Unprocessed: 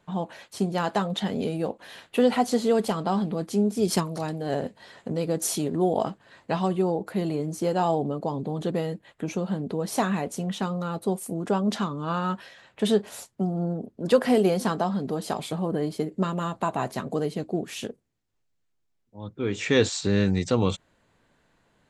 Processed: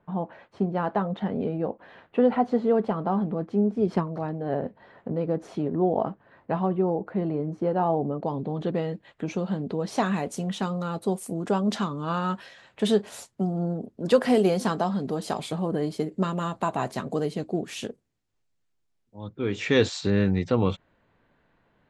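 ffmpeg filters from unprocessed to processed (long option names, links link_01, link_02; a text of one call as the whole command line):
ffmpeg -i in.wav -af "asetnsamples=nb_out_samples=441:pad=0,asendcmd='8.23 lowpass f 3200;8.94 lowpass f 5200;10.06 lowpass f 10000;19.29 lowpass f 5100;20.1 lowpass f 2700',lowpass=1500" out.wav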